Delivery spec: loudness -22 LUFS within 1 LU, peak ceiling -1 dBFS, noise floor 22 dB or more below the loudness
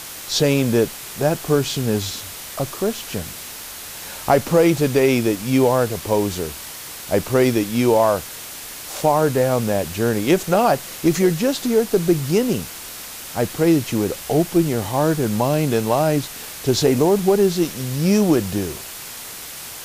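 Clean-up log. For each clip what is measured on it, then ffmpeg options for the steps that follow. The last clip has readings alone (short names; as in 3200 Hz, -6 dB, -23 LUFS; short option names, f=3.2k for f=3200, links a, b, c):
noise floor -35 dBFS; noise floor target -42 dBFS; loudness -19.5 LUFS; peak -3.5 dBFS; loudness target -22.0 LUFS
-> -af "afftdn=nr=7:nf=-35"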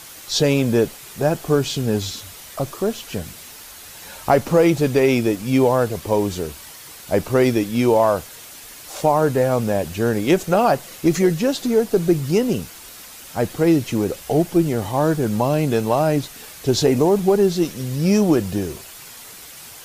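noise floor -40 dBFS; noise floor target -42 dBFS
-> -af "afftdn=nr=6:nf=-40"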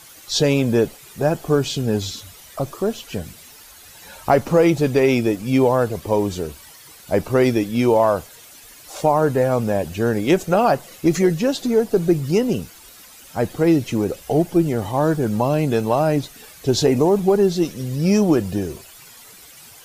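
noise floor -44 dBFS; loudness -19.5 LUFS; peak -3.5 dBFS; loudness target -22.0 LUFS
-> -af "volume=-2.5dB"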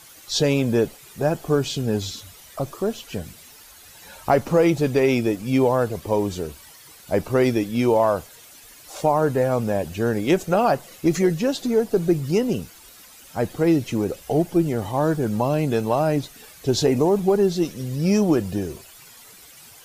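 loudness -22.0 LUFS; peak -6.0 dBFS; noise floor -47 dBFS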